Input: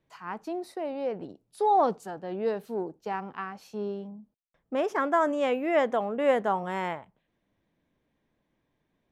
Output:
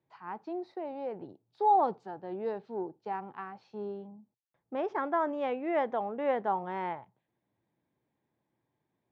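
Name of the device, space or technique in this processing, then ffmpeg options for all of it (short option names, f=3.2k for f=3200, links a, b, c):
guitar cabinet: -af "highpass=89,equalizer=f=120:t=q:w=4:g=9,equalizer=f=360:t=q:w=4:g=5,equalizer=f=850:t=q:w=4:g=8,equalizer=f=2.9k:t=q:w=4:g=-4,lowpass=f=4.3k:w=0.5412,lowpass=f=4.3k:w=1.3066,volume=-7.5dB"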